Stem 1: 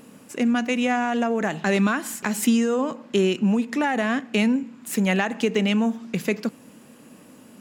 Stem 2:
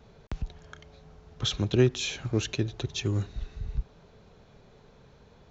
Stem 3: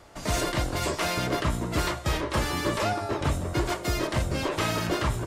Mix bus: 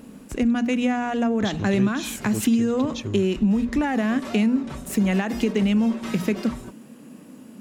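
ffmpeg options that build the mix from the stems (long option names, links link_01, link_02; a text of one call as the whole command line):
ffmpeg -i stem1.wav -i stem2.wav -i stem3.wav -filter_complex "[0:a]equalizer=frequency=220:width=0.85:gain=8.5,bandreject=frequency=60:width_type=h:width=6,bandreject=frequency=120:width_type=h:width=6,bandreject=frequency=180:width_type=h:width=6,bandreject=frequency=240:width_type=h:width=6,volume=-2dB[link_01];[1:a]volume=-2dB,asplit=2[link_02][link_03];[2:a]aecho=1:1:5.3:0.74,adelay=1450,volume=-10dB[link_04];[link_03]apad=whole_len=296316[link_05];[link_04][link_05]sidechaincompress=threshold=-41dB:ratio=4:attack=8.2:release=372[link_06];[link_01][link_02][link_06]amix=inputs=3:normalize=0,acompressor=threshold=-19dB:ratio=2.5" out.wav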